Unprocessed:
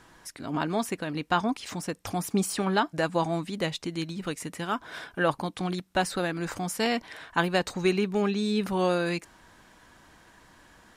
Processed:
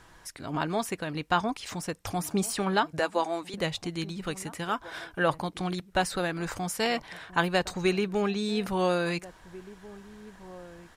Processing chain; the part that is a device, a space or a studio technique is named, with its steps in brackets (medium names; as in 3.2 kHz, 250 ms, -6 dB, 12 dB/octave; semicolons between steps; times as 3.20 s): 2.99–3.54 s: high-pass 290 Hz 24 dB/octave; low shelf boost with a cut just above (bass shelf 71 Hz +7.5 dB; peaking EQ 250 Hz -5.5 dB 0.77 oct); echo from a far wall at 290 m, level -18 dB